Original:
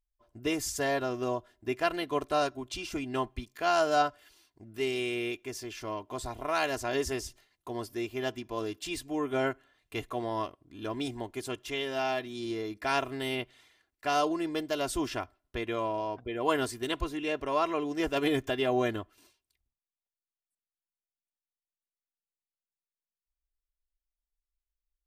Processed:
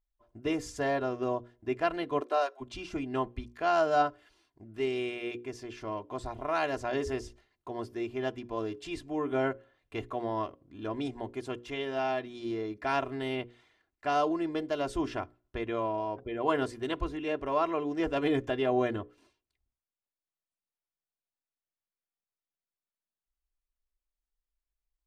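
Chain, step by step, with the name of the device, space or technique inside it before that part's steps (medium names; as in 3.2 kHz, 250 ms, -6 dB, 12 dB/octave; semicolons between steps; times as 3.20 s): through cloth (low-pass 9 kHz 12 dB/octave; treble shelf 2.9 kHz -12 dB); hum notches 60/120/180/240/300/360/420/480/540 Hz; 2.20–2.60 s: high-pass 220 Hz -> 770 Hz 24 dB/octave; trim +1 dB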